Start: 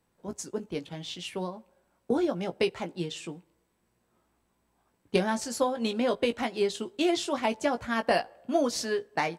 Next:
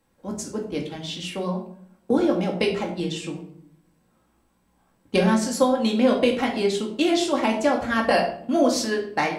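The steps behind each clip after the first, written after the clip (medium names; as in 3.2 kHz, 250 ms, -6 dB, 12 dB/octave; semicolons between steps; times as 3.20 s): simulated room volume 1000 m³, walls furnished, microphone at 2.2 m; trim +3.5 dB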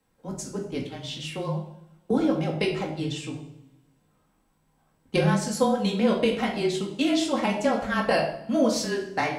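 two-slope reverb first 0.8 s, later 2.5 s, from -24 dB, DRR 10.5 dB; frequency shift -26 Hz; trim -3 dB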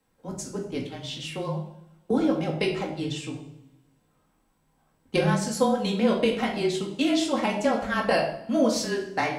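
hum notches 50/100/150/200 Hz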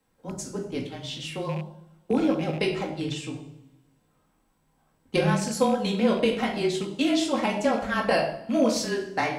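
rattle on loud lows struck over -30 dBFS, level -32 dBFS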